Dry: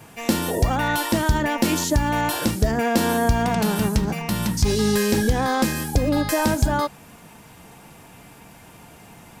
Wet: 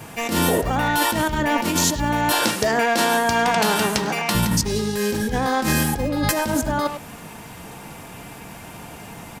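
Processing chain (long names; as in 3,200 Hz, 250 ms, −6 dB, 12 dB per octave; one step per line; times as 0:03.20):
0:02.32–0:04.35: meter weighting curve A
compressor whose output falls as the input rises −25 dBFS, ratio −1
far-end echo of a speakerphone 100 ms, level −6 dB
level +4 dB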